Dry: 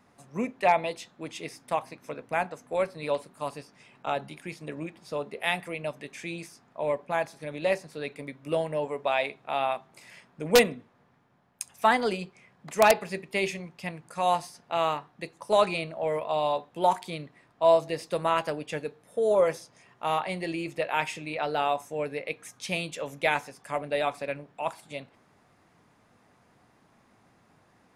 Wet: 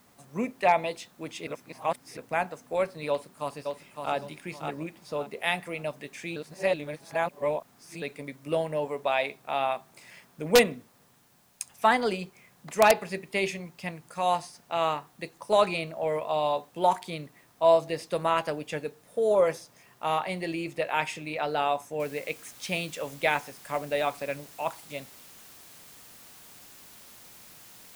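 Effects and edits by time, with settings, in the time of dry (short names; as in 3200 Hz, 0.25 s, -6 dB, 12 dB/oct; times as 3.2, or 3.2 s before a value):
1.47–2.17 reverse
3.09–4.14 echo throw 0.56 s, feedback 30%, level -5.5 dB
6.36–8.02 reverse
13.94–14.82 elliptic low-pass 11000 Hz
22 noise floor step -65 dB -51 dB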